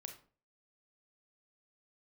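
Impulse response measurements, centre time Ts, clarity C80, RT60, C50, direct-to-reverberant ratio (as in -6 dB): 15 ms, 14.0 dB, 0.40 s, 8.5 dB, 4.5 dB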